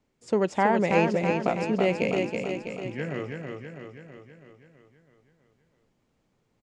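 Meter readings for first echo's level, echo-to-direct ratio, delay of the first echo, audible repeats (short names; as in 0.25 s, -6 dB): -4.5 dB, -3.0 dB, 0.326 s, 7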